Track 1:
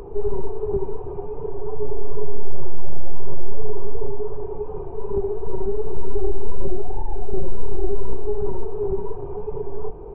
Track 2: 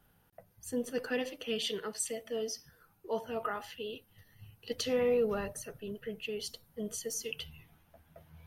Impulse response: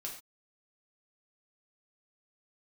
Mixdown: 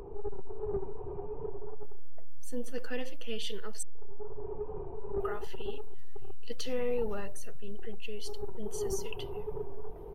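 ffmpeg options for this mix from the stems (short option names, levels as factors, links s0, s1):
-filter_complex "[0:a]asoftclip=type=tanh:threshold=0.141,volume=0.398[s0];[1:a]adelay=1800,volume=0.596,asplit=3[s1][s2][s3];[s1]atrim=end=3.83,asetpts=PTS-STARTPTS,afade=t=out:st=3.826:d=0.004:c=hsin[s4];[s2]atrim=start=3.83:end=5.2,asetpts=PTS-STARTPTS,volume=0[s5];[s3]atrim=start=5.2,asetpts=PTS-STARTPTS,afade=t=in:d=0.004:c=hsin[s6];[s4][s5][s6]concat=n=3:v=0:a=1[s7];[s0][s7]amix=inputs=2:normalize=0"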